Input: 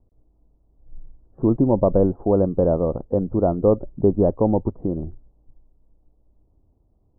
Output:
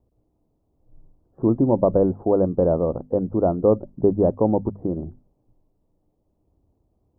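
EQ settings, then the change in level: HPF 72 Hz 6 dB/oct; notches 50/100/150/200/250 Hz; 0.0 dB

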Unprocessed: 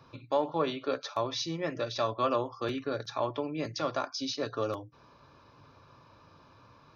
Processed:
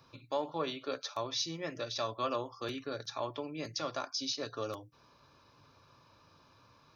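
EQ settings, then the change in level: high shelf 3500 Hz +11 dB; -6.5 dB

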